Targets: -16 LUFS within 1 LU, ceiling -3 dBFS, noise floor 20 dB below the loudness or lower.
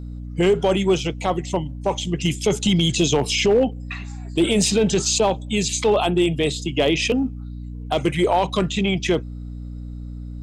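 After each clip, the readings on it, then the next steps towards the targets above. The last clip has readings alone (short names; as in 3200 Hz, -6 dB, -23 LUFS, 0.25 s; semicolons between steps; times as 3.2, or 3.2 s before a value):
clipped 0.4%; flat tops at -10.5 dBFS; hum 60 Hz; harmonics up to 300 Hz; hum level -30 dBFS; loudness -20.5 LUFS; peak -10.5 dBFS; loudness target -16.0 LUFS
-> clip repair -10.5 dBFS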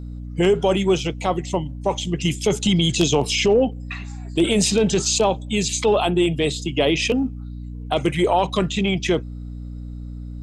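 clipped 0.0%; hum 60 Hz; harmonics up to 300 Hz; hum level -30 dBFS
-> notches 60/120/180/240/300 Hz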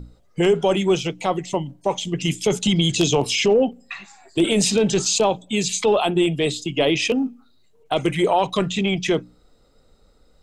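hum none; loudness -20.5 LUFS; peak -2.5 dBFS; loudness target -16.0 LUFS
-> gain +4.5 dB; limiter -3 dBFS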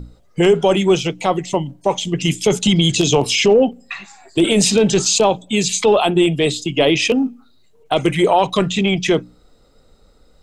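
loudness -16.0 LUFS; peak -3.0 dBFS; noise floor -52 dBFS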